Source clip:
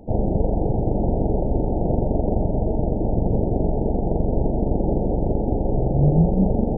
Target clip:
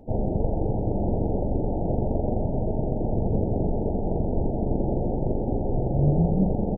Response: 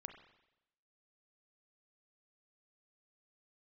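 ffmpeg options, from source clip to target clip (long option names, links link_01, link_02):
-filter_complex "[0:a]asplit=2[link_01][link_02];[1:a]atrim=start_sample=2205,adelay=97[link_03];[link_02][link_03]afir=irnorm=-1:irlink=0,volume=-6dB[link_04];[link_01][link_04]amix=inputs=2:normalize=0,flanger=delay=7.7:depth=3.1:regen=-66:speed=0.37:shape=sinusoidal,asplit=2[link_05][link_06];[link_06]aecho=0:1:333:0.211[link_07];[link_05][link_07]amix=inputs=2:normalize=0"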